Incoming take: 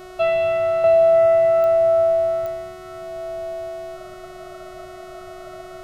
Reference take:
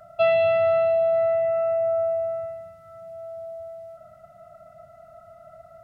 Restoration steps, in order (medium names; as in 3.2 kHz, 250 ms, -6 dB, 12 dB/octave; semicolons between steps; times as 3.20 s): de-click; de-hum 368.3 Hz, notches 38; expander -30 dBFS, range -21 dB; trim 0 dB, from 0.84 s -7 dB